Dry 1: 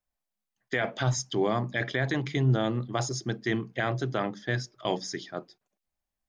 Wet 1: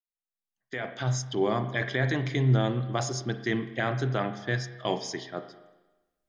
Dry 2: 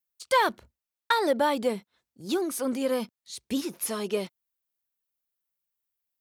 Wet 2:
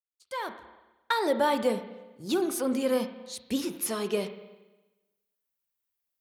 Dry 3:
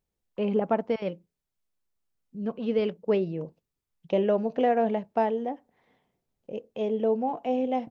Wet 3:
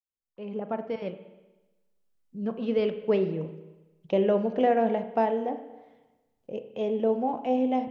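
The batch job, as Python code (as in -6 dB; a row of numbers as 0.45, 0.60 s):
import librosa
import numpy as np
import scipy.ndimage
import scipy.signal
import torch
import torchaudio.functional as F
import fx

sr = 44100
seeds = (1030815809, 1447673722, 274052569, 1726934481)

y = fx.fade_in_head(x, sr, length_s=1.62)
y = fx.rev_spring(y, sr, rt60_s=1.1, pass_ms=(31, 39), chirp_ms=30, drr_db=9.0)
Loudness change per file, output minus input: +0.5, -1.5, 0.0 LU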